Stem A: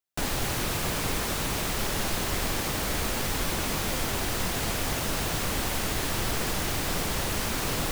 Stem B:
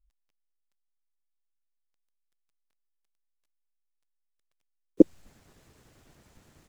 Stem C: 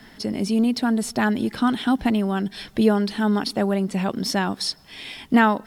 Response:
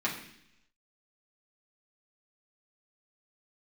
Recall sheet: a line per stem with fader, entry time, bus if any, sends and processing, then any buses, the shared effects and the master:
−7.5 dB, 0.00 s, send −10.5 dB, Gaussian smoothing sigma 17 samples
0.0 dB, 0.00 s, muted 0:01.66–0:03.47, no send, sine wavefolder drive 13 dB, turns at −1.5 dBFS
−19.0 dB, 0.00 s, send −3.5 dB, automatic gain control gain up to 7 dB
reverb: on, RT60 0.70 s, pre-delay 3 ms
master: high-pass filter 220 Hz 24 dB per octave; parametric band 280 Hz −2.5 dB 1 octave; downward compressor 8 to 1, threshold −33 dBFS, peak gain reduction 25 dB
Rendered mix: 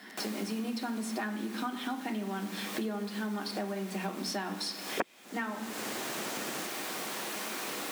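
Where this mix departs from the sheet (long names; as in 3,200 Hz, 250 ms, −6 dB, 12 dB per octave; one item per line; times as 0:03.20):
stem A: missing Gaussian smoothing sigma 17 samples
stem B 0.0 dB → +11.5 dB
stem C −19.0 dB → −7.5 dB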